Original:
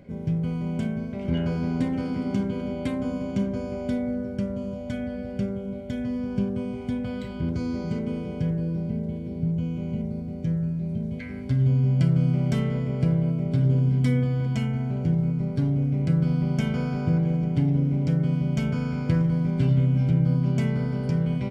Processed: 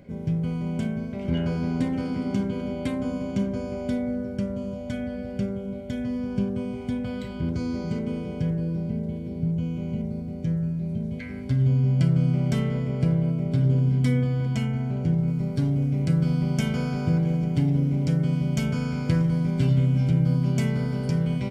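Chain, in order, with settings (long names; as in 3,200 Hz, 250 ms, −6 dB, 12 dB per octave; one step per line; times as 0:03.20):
high-shelf EQ 4,500 Hz +3.5 dB, from 0:15.28 +11 dB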